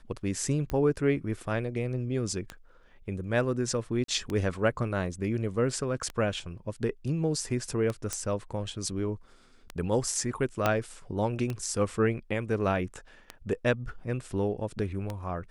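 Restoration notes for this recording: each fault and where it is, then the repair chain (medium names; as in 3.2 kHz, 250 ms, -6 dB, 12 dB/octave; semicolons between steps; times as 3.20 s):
tick 33 1/3 rpm -19 dBFS
4.04–4.08 s: dropout 43 ms
8.13 s: pop -16 dBFS
10.66 s: pop -10 dBFS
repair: de-click; interpolate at 4.04 s, 43 ms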